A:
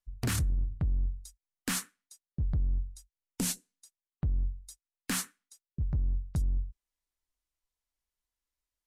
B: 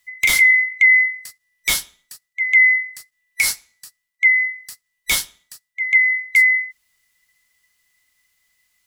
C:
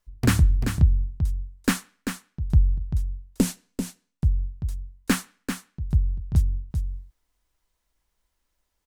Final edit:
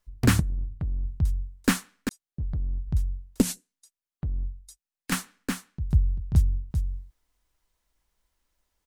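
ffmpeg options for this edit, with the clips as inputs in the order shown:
-filter_complex "[0:a]asplit=3[s0][s1][s2];[2:a]asplit=4[s3][s4][s5][s6];[s3]atrim=end=0.402[s7];[s0]atrim=start=0.398:end=1.052[s8];[s4]atrim=start=1.048:end=2.092[s9];[s1]atrim=start=2.088:end=2.872[s10];[s5]atrim=start=2.868:end=3.422[s11];[s2]atrim=start=3.418:end=5.122[s12];[s6]atrim=start=5.118[s13];[s7][s8]acrossfade=d=0.004:c1=hsin:c2=hsin[s14];[s14][s9]acrossfade=d=0.004:c1=hsin:c2=hsin[s15];[s15][s10]acrossfade=d=0.004:c1=hsin:c2=hsin[s16];[s16][s11]acrossfade=d=0.004:c1=hsin:c2=hsin[s17];[s17][s12]acrossfade=d=0.004:c1=hsin:c2=hsin[s18];[s18][s13]acrossfade=d=0.004:c1=hsin:c2=hsin"

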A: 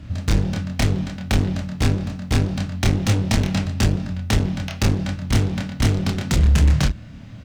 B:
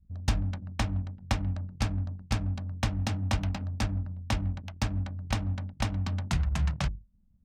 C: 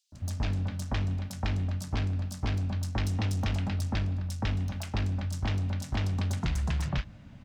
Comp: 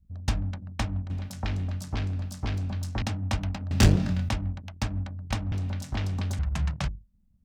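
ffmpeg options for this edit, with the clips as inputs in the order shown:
-filter_complex "[2:a]asplit=2[s0][s1];[1:a]asplit=4[s2][s3][s4][s5];[s2]atrim=end=1.102[s6];[s0]atrim=start=1.098:end=3.022[s7];[s3]atrim=start=3.018:end=3.712[s8];[0:a]atrim=start=3.708:end=4.292[s9];[s4]atrim=start=4.288:end=5.522[s10];[s1]atrim=start=5.518:end=6.392[s11];[s5]atrim=start=6.388[s12];[s6][s7]acrossfade=d=0.004:c1=hsin:c2=hsin[s13];[s13][s8]acrossfade=d=0.004:c1=hsin:c2=hsin[s14];[s14][s9]acrossfade=d=0.004:c1=hsin:c2=hsin[s15];[s15][s10]acrossfade=d=0.004:c1=hsin:c2=hsin[s16];[s16][s11]acrossfade=d=0.004:c1=hsin:c2=hsin[s17];[s17][s12]acrossfade=d=0.004:c1=hsin:c2=hsin"

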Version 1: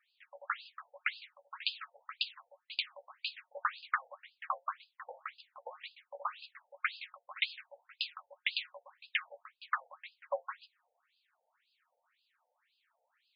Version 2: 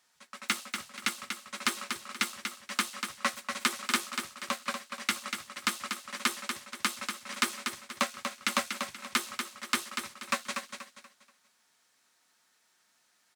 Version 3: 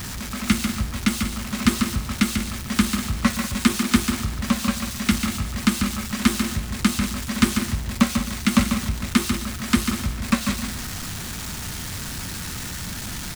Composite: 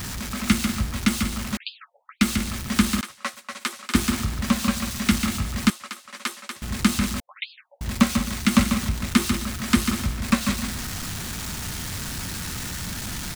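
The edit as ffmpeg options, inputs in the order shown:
-filter_complex "[0:a]asplit=2[s0][s1];[1:a]asplit=2[s2][s3];[2:a]asplit=5[s4][s5][s6][s7][s8];[s4]atrim=end=1.572[s9];[s0]atrim=start=1.568:end=2.212[s10];[s5]atrim=start=2.208:end=3.012[s11];[s2]atrim=start=3.008:end=3.952[s12];[s6]atrim=start=3.948:end=5.702[s13];[s3]atrim=start=5.698:end=6.622[s14];[s7]atrim=start=6.618:end=7.202[s15];[s1]atrim=start=7.198:end=7.812[s16];[s8]atrim=start=7.808[s17];[s9][s10]acrossfade=d=0.004:c1=hsin:c2=hsin[s18];[s18][s11]acrossfade=d=0.004:c1=hsin:c2=hsin[s19];[s19][s12]acrossfade=d=0.004:c1=hsin:c2=hsin[s20];[s20][s13]acrossfade=d=0.004:c1=hsin:c2=hsin[s21];[s21][s14]acrossfade=d=0.004:c1=hsin:c2=hsin[s22];[s22][s15]acrossfade=d=0.004:c1=hsin:c2=hsin[s23];[s23][s16]acrossfade=d=0.004:c1=hsin:c2=hsin[s24];[s24][s17]acrossfade=d=0.004:c1=hsin:c2=hsin"

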